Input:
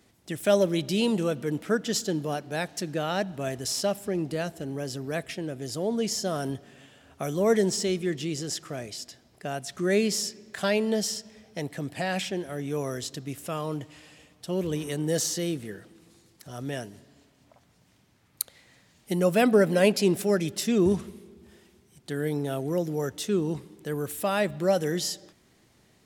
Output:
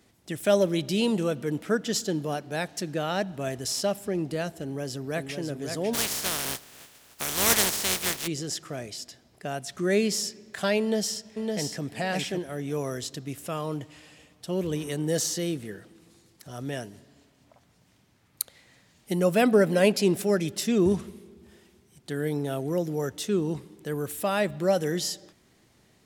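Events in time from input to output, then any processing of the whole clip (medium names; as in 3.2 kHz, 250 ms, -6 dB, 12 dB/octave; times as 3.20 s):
4.61–5.37 s: echo throw 550 ms, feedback 40%, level -6 dB
5.93–8.26 s: spectral contrast reduction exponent 0.22
10.80–11.82 s: echo throw 560 ms, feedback 15%, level -4 dB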